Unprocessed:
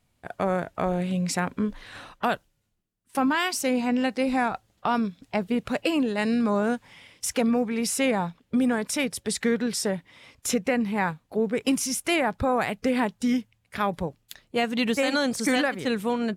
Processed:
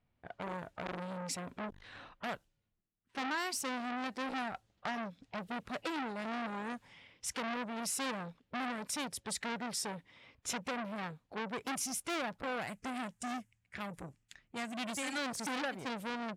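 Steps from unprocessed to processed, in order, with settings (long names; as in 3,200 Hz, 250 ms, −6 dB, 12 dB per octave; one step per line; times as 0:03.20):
low-pass that shuts in the quiet parts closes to 2,600 Hz, open at −24.5 dBFS
0:12.67–0:15.18: octave-band graphic EQ 500/1,000/2,000/4,000/8,000 Hz −8/−3/+4/−7/+10 dB
hard clipping −14 dBFS, distortion −36 dB
saturating transformer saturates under 2,000 Hz
level −8 dB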